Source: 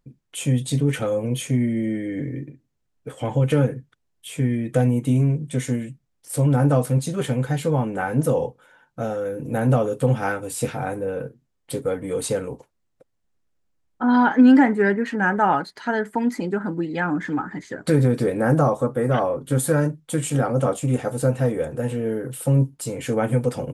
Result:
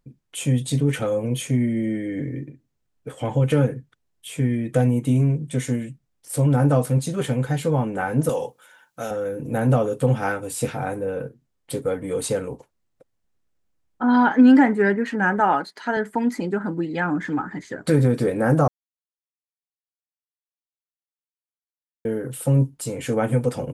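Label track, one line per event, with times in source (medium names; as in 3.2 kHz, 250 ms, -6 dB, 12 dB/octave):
8.290000	9.110000	tilt EQ +3.5 dB/octave
15.400000	15.970000	high-pass 210 Hz
18.680000	22.050000	mute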